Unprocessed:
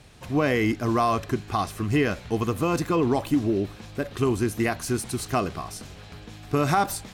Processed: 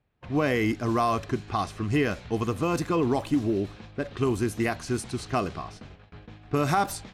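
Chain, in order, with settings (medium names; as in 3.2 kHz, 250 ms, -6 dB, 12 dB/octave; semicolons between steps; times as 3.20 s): level-controlled noise filter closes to 2.1 kHz, open at -19.5 dBFS; gate -42 dBFS, range -21 dB; trim -2 dB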